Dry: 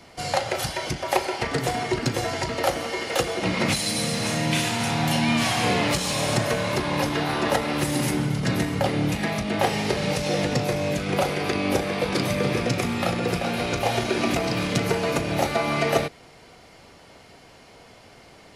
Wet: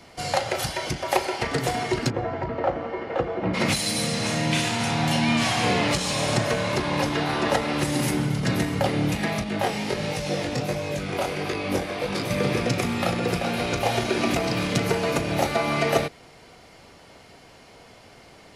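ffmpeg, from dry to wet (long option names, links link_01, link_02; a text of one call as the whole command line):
ffmpeg -i in.wav -filter_complex "[0:a]asplit=3[link_01][link_02][link_03];[link_01]afade=type=out:start_time=2.09:duration=0.02[link_04];[link_02]lowpass=1300,afade=type=in:start_time=2.09:duration=0.02,afade=type=out:start_time=3.53:duration=0.02[link_05];[link_03]afade=type=in:start_time=3.53:duration=0.02[link_06];[link_04][link_05][link_06]amix=inputs=3:normalize=0,asettb=1/sr,asplit=3[link_07][link_08][link_09];[link_07]atrim=end=4.074[link_10];[link_08]atrim=start=4.07:end=7.99,asetpts=PTS-STARTPTS,afade=type=in:duration=0.004:curve=qsin,afade=type=out:start_time=3.916:duration=0.004:curve=qsin,lowpass=10000[link_11];[link_09]atrim=start=7.986[link_12];[link_10][link_11]acrossfade=duration=0.004:curve1=hsin:curve2=qsin[link_13];[link_13][link_12]acrossfade=duration=0.004:curve1=qsin:curve2=hsin,asettb=1/sr,asplit=3[link_14][link_15][link_16];[link_14]atrim=end=9.444[link_17];[link_15]atrim=start=9.44:end=12.31,asetpts=PTS-STARTPTS,afade=type=in:duration=0.004:curve=qsin,afade=type=out:start_time=2.866:duration=0.004:curve=qsin,flanger=delay=18:depth=5.5:speed=1.4[link_18];[link_16]atrim=start=12.306[link_19];[link_17][link_18]acrossfade=duration=0.004:curve1=hsin:curve2=qsin[link_20];[link_20][link_19]acrossfade=duration=0.004:curve1=qsin:curve2=hsin" out.wav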